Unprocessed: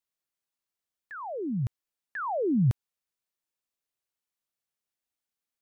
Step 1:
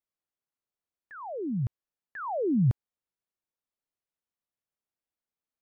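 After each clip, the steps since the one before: high shelf 2000 Hz -12 dB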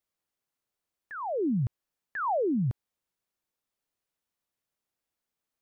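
limiter -29 dBFS, peak gain reduction 12 dB; gain +5.5 dB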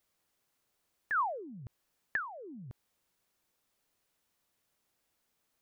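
negative-ratio compressor -36 dBFS, ratio -0.5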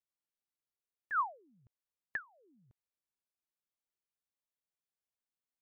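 upward expander 2.5:1, over -42 dBFS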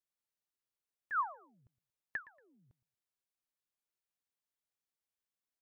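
feedback echo 0.116 s, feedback 23%, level -20 dB; gain -1.5 dB

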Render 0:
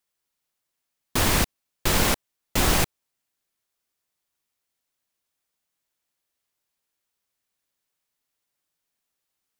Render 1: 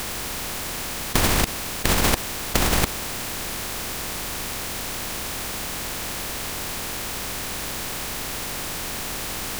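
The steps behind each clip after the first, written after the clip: per-bin compression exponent 0.4; negative-ratio compressor -22 dBFS, ratio -0.5; gain +6.5 dB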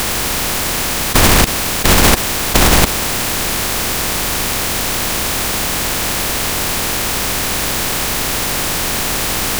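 sample leveller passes 3; gain +1 dB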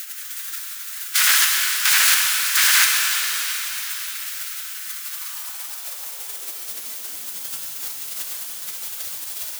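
spectral gate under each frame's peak -20 dB weak; high-pass sweep 1500 Hz -> 76 Hz, 4.88–8.09; shimmer reverb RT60 4 s, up +7 st, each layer -8 dB, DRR -0.5 dB; gain -3.5 dB

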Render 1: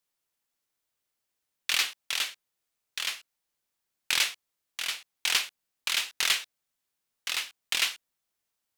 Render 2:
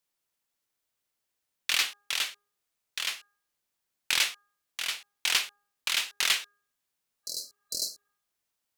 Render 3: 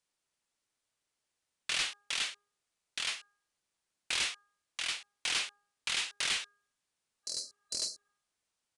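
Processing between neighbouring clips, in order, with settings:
de-hum 408.3 Hz, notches 4; spectral repair 7.26–8.06, 660–4000 Hz after
soft clip -27 dBFS, distortion -7 dB; downsampling 22050 Hz

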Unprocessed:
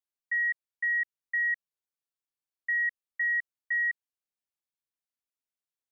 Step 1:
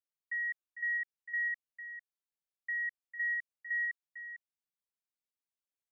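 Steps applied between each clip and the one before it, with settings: echo 0.451 s -10 dB; gain -7.5 dB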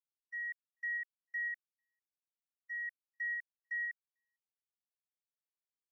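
gate -36 dBFS, range -41 dB; differentiator; gain +7.5 dB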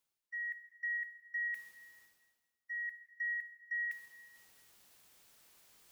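reverse; upward compressor, threshold -41 dBFS; reverse; plate-style reverb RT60 1.4 s, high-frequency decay 0.95×, DRR 11.5 dB; gain +1 dB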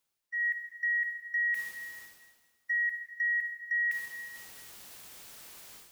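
AGC gain up to 12 dB; limiter -28.5 dBFS, peak gain reduction 8 dB; gain +3 dB

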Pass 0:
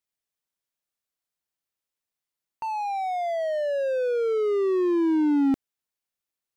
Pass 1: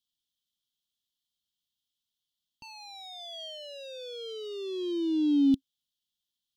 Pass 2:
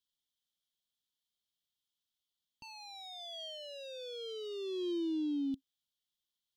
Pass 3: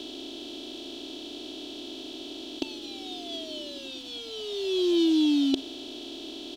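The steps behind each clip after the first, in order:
EQ curve 270 Hz 0 dB, 410 Hz -15 dB, 700 Hz -22 dB, 2100 Hz -24 dB, 3200 Hz +13 dB, 4700 Hz +4 dB, 8400 Hz -3 dB
limiter -27.5 dBFS, peak gain reduction 11 dB; gain -3.5 dB
per-bin compression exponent 0.2; comb 3 ms, depth 72%; upward expander 1.5:1, over -39 dBFS; gain +6 dB

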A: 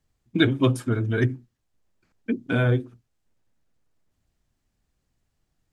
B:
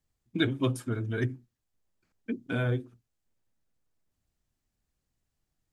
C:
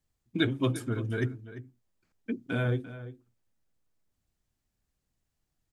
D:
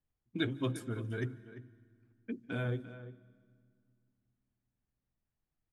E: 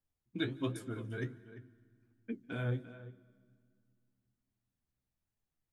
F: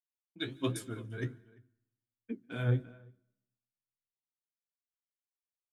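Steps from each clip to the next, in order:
high shelf 6200 Hz +5.5 dB; gain -7.5 dB
outdoor echo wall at 59 m, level -14 dB
low-pass opened by the level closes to 2200 Hz, open at -28.5 dBFS; on a send at -21.5 dB: reverb RT60 2.1 s, pre-delay 0.142 s; on the sum: gain -6.5 dB
flange 1.3 Hz, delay 8.6 ms, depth 7.9 ms, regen +52%; gain +2 dB
opening faded in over 0.77 s; three-band expander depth 100%

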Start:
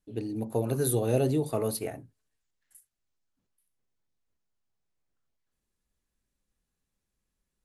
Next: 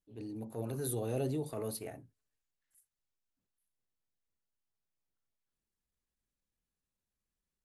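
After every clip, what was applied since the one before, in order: transient shaper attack -8 dB, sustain +1 dB; gain -8 dB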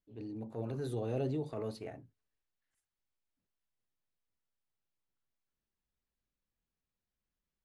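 air absorption 120 m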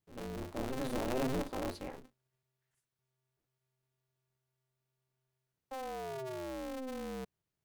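painted sound fall, 5.71–7.25, 320–670 Hz -42 dBFS; polarity switched at an audio rate 130 Hz; gain +1 dB

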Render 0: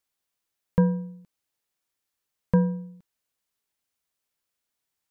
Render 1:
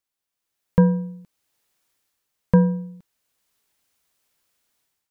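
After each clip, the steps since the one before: AGC gain up to 14 dB; gain -3 dB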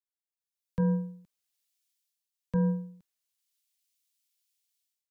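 limiter -16 dBFS, peak gain reduction 11.5 dB; three-band expander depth 70%; gain -6.5 dB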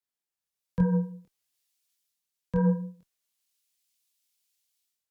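chorus voices 2, 1.3 Hz, delay 24 ms, depth 3 ms; added harmonics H 3 -26 dB, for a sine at -19.5 dBFS; gain +7.5 dB

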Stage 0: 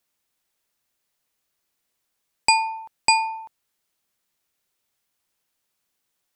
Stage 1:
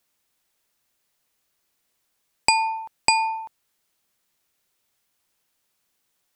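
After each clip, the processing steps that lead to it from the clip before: compressor, threshold -18 dBFS, peak gain reduction 6 dB; gain +3.5 dB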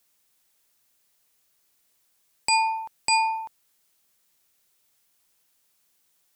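high shelf 4700 Hz +6.5 dB; limiter -10.5 dBFS, peak gain reduction 11 dB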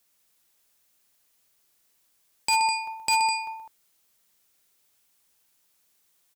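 tapped delay 61/125/204 ms -13.5/-7.5/-8 dB; wavefolder -14 dBFS; gain -1 dB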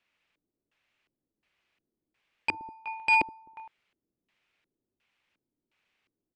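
LFO low-pass square 1.4 Hz 320–2500 Hz; gain -2.5 dB

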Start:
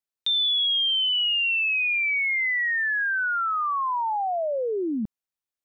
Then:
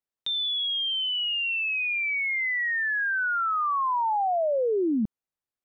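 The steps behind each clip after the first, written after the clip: high shelf 2000 Hz -10 dB; gain +2.5 dB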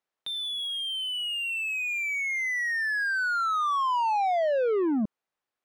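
overdrive pedal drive 18 dB, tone 1500 Hz, clips at -21 dBFS

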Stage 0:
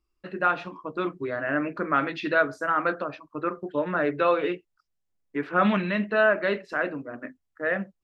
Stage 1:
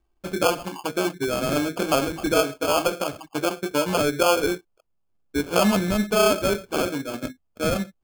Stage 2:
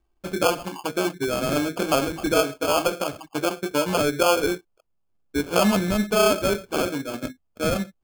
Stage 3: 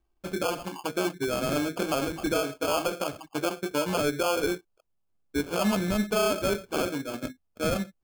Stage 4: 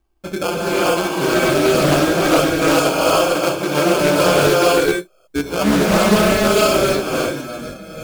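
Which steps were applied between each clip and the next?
LPF 2000 Hz 12 dB/oct; in parallel at +3 dB: compressor, threshold -31 dBFS, peak gain reduction 13.5 dB; on the sum: sample-and-hold 23×
nothing audible
limiter -14.5 dBFS, peak gain reduction 7.5 dB; gain -3.5 dB
ending faded out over 1.70 s; non-linear reverb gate 0.48 s rising, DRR -6.5 dB; Doppler distortion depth 0.29 ms; gain +6.5 dB

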